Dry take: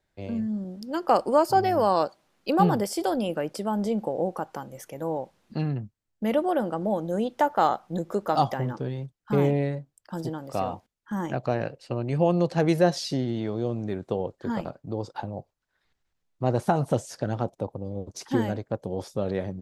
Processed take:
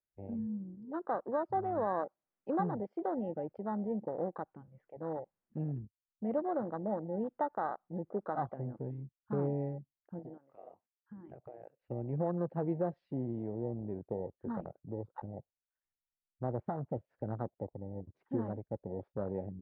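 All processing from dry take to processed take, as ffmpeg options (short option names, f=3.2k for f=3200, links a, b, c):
-filter_complex "[0:a]asettb=1/sr,asplit=3[a][b][c];[a]atrim=end=10.194[d];[b]atrim=start=10.19:end=11.81,asetpts=PTS-STARTPTS,afade=t=in:d=0.004:c=qsin,afade=t=out:st=1.616:d=0.004:c=qsin,highpass=f=330:p=1,acompressor=threshold=-32dB:ratio=12:attack=3.2:release=140:knee=1:detection=peak[e];[c]atrim=start=11.806[f];[d][e]acrossfade=d=0.004:c1=hsin:c2=qsin[g];[g][f]acrossfade=d=0.004:c1=qsin:c2=hsin,alimiter=limit=-13.5dB:level=0:latency=1:release=369,lowpass=f=2.2k:w=0.5412,lowpass=f=2.2k:w=1.3066,afwtdn=0.0355,volume=-9dB"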